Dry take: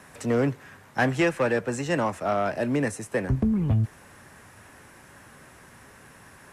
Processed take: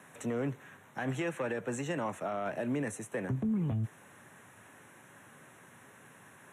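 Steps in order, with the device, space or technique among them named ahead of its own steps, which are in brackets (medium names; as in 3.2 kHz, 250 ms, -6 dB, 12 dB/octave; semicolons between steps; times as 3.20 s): PA system with an anti-feedback notch (high-pass 110 Hz 24 dB/octave; Butterworth band-stop 4.8 kHz, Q 2.5; peak limiter -20 dBFS, peak gain reduction 10 dB); trim -5.5 dB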